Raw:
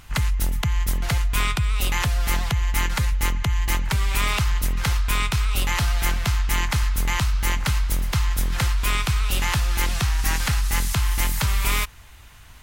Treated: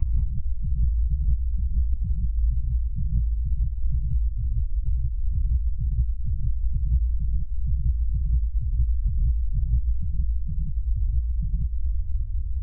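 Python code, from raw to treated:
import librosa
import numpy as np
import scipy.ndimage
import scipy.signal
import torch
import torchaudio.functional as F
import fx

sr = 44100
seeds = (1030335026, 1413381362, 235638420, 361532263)

y = fx.low_shelf(x, sr, hz=160.0, db=6.5)
y = fx.over_compress(y, sr, threshold_db=-28.0, ratio=-1.0)
y = fx.tube_stage(y, sr, drive_db=15.0, bias=0.35)
y = fx.spec_topn(y, sr, count=2)
y = fx.lpc_vocoder(y, sr, seeds[0], excitation='whisper', order=10)
y = fx.fixed_phaser(y, sr, hz=2300.0, stages=8)
y = fx.rev_gated(y, sr, seeds[1], gate_ms=210, shape='rising', drr_db=-1.0)
y = y * librosa.db_to_amplitude(6.5)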